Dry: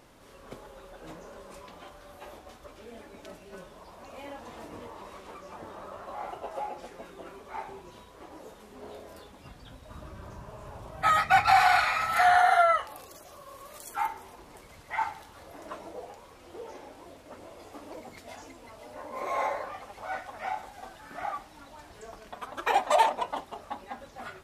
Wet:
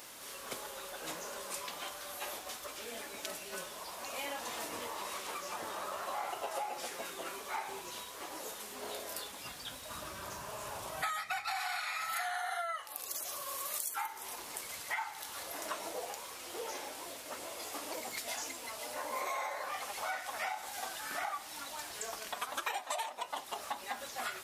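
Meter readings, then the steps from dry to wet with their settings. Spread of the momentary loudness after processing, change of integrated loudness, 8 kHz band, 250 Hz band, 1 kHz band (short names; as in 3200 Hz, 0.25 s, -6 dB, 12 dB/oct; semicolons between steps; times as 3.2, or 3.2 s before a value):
7 LU, -12.5 dB, +7.5 dB, -5.0 dB, -11.5 dB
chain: tilt +4 dB/oct; compressor 16:1, threshold -38 dBFS, peak gain reduction 22.5 dB; gain +4 dB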